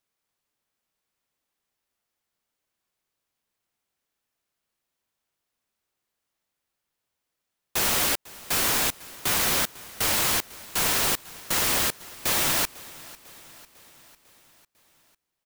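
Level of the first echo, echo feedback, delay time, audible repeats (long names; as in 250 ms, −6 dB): −20.5 dB, 58%, 499 ms, 4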